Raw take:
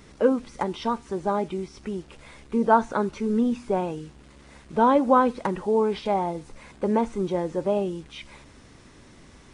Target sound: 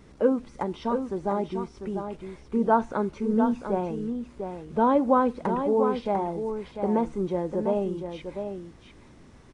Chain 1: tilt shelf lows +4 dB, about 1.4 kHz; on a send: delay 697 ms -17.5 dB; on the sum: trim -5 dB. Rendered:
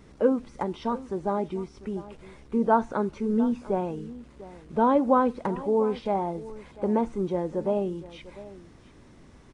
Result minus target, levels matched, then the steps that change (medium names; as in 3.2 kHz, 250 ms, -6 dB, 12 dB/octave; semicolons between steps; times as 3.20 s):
echo-to-direct -10 dB
change: delay 697 ms -7.5 dB